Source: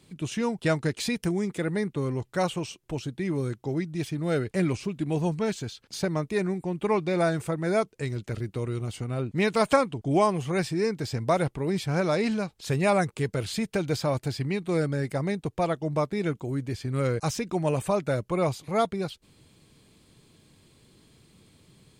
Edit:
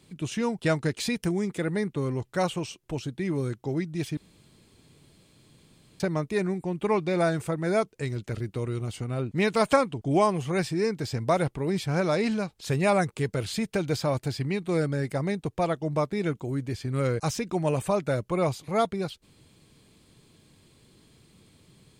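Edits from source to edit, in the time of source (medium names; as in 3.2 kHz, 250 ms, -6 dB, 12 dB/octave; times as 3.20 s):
4.17–6.00 s: room tone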